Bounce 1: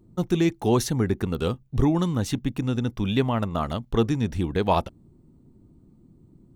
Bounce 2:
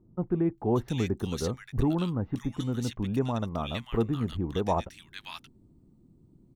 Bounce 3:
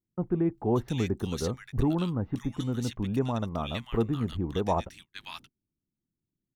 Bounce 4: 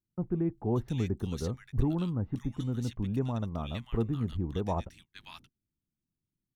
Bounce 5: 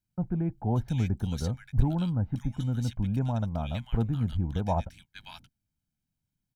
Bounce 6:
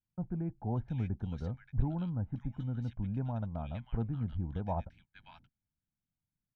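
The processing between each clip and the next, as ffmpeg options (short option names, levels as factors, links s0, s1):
-filter_complex "[0:a]acrossover=split=6000[s0][s1];[s1]alimiter=level_in=2.66:limit=0.0631:level=0:latency=1:release=316,volume=0.376[s2];[s0][s2]amix=inputs=2:normalize=0,acrossover=split=1500[s3][s4];[s4]adelay=580[s5];[s3][s5]amix=inputs=2:normalize=0,volume=0.562"
-af "agate=range=0.0355:threshold=0.00398:ratio=16:detection=peak"
-af "lowshelf=f=220:g=8.5,volume=0.447"
-af "aecho=1:1:1.3:0.62,volume=1.19"
-af "lowpass=2200,volume=0.447"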